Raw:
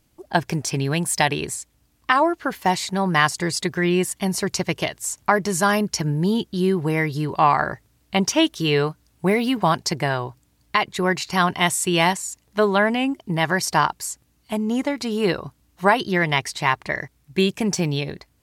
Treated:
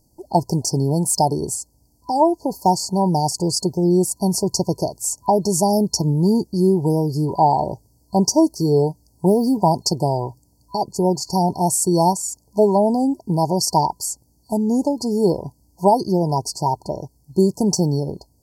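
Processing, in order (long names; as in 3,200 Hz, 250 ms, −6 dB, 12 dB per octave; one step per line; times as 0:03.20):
brick-wall band-stop 1,000–4,300 Hz
0:12.90–0:13.63: dynamic equaliser 4,300 Hz, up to +4 dB, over −39 dBFS, Q 0.79
level +4 dB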